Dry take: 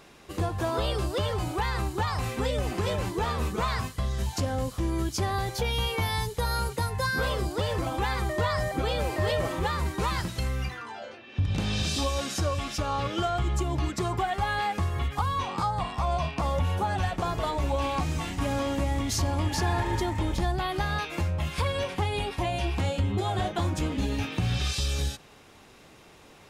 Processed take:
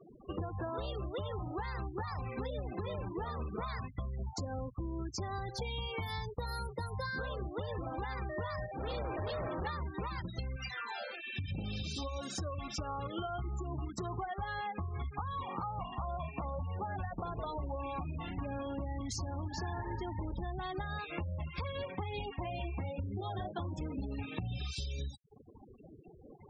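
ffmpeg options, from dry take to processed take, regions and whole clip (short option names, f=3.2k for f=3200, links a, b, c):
-filter_complex "[0:a]asettb=1/sr,asplit=3[a][b][c];[a]atrim=end=8.664[d];[b]atrim=start=8.66:end=9.67,asetpts=PTS-STARTPTS,afade=t=in:d=0.004:c=qsin,afade=t=out:st=1.006:d=0.004:c=qsin,equalizer=f=2k:w=5.6:g=-13,asoftclip=type=hard:threshold=-33dB[e];[c]atrim=start=9.666[f];[d][e]acrossfade=d=0.004:c1=hsin:c2=qsin[g];[g][f]acrossfade=d=0.004:c1=qsin:c2=hsin,asettb=1/sr,asplit=3[h][i][j];[h]atrim=end=10.564[k];[i]atrim=start=10.56:end=11.52,asetpts=PTS-STARTPTS,afade=t=in:d=0.004:c=qsin,afade=t=out:st=0.956:d=0.004:c=qsin,highpass=61,tiltshelf=f=1.2k:g=-7[l];[j]atrim=start=11.516[m];[k][l]acrossfade=d=0.004:c1=hsin:c2=qsin[n];[n][m]acrossfade=d=0.004:c1=qsin:c2=hsin,bandreject=f=3k:w=29,acompressor=threshold=-40dB:ratio=6,afftfilt=real='re*gte(hypot(re,im),0.00794)':imag='im*gte(hypot(re,im),0.00794)':win_size=1024:overlap=0.75,volume=3.5dB"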